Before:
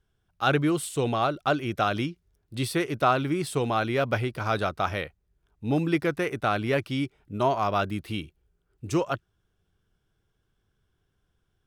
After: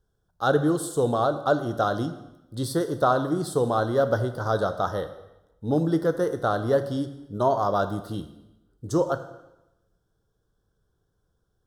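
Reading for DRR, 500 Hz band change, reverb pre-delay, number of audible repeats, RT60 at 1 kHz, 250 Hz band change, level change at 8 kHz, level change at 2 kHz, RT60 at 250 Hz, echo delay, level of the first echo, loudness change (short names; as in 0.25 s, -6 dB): 9.0 dB, +4.5 dB, 4 ms, none, 0.90 s, +1.0 dB, +0.5 dB, -4.0 dB, 1.0 s, none, none, +2.0 dB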